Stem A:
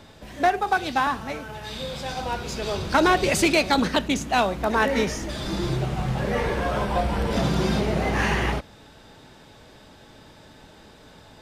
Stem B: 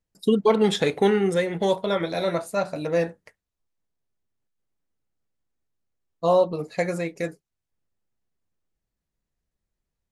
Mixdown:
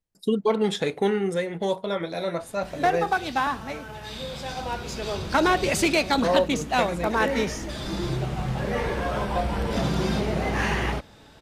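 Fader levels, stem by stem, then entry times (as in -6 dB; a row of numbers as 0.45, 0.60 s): -2.0, -3.5 dB; 2.40, 0.00 s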